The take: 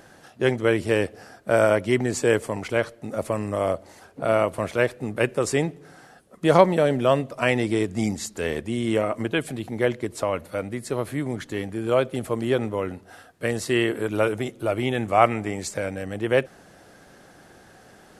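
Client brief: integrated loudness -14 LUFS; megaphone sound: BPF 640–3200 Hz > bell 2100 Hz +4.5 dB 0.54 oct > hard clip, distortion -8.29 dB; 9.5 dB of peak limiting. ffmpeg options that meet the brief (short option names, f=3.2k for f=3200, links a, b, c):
-af "alimiter=limit=-12dB:level=0:latency=1,highpass=640,lowpass=3.2k,equalizer=f=2.1k:t=o:w=0.54:g=4.5,asoftclip=type=hard:threshold=-26.5dB,volume=20dB"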